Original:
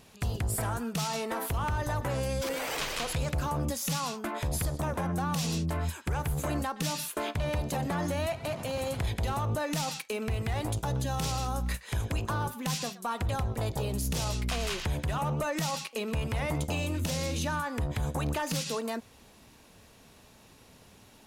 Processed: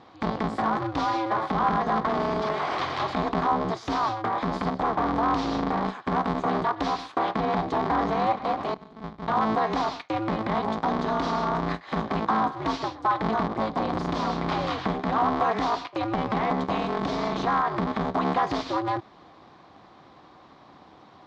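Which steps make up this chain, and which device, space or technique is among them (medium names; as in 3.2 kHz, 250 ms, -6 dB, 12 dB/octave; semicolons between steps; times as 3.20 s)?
8.74–9.28 s: amplifier tone stack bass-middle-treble 10-0-1; ring modulator pedal into a guitar cabinet (polarity switched at an audio rate 110 Hz; cabinet simulation 91–4100 Hz, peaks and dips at 300 Hz +4 dB, 760 Hz +8 dB, 1.1 kHz +10 dB, 2.7 kHz -9 dB); trim +3 dB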